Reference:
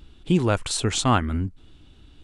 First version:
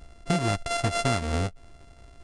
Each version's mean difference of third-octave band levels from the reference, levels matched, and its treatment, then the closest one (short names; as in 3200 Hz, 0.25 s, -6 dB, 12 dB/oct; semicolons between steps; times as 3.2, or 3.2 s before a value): 8.5 dB: sample sorter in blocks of 64 samples; compressor, threshold -21 dBFS, peak gain reduction 7.5 dB; downsampling 22050 Hz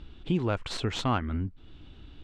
4.0 dB: tracing distortion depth 0.032 ms; LPF 3900 Hz 12 dB/oct; compressor 1.5:1, threshold -42 dBFS, peak gain reduction 10 dB; gain +2 dB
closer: second